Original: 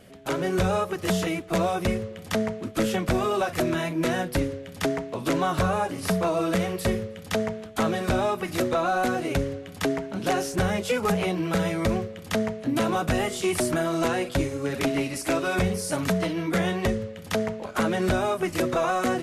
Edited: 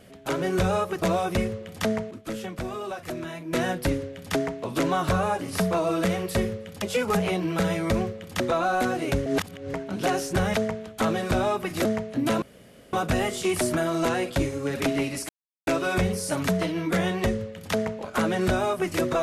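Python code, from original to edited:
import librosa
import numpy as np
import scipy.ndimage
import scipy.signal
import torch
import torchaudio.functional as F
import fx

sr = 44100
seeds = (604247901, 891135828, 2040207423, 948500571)

y = fx.edit(x, sr, fx.cut(start_s=1.02, length_s=0.5),
    fx.clip_gain(start_s=2.61, length_s=1.42, db=-8.5),
    fx.swap(start_s=7.32, length_s=1.31, other_s=10.77, other_length_s=1.58),
    fx.reverse_span(start_s=9.49, length_s=0.48),
    fx.insert_room_tone(at_s=12.92, length_s=0.51),
    fx.insert_silence(at_s=15.28, length_s=0.38), tone=tone)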